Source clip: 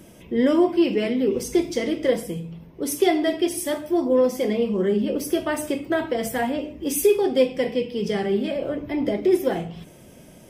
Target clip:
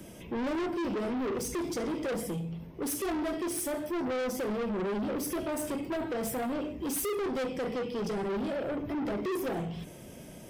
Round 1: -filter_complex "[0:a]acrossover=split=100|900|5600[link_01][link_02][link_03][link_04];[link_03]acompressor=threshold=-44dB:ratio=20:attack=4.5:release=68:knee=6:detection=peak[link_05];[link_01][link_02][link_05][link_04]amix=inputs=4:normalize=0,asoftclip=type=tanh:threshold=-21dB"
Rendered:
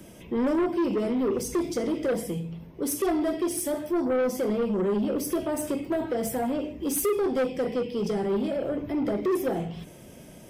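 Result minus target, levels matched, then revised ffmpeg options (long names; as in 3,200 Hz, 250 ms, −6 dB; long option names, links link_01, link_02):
soft clipping: distortion −5 dB
-filter_complex "[0:a]acrossover=split=100|900|5600[link_01][link_02][link_03][link_04];[link_03]acompressor=threshold=-44dB:ratio=20:attack=4.5:release=68:knee=6:detection=peak[link_05];[link_01][link_02][link_05][link_04]amix=inputs=4:normalize=0,asoftclip=type=tanh:threshold=-30dB"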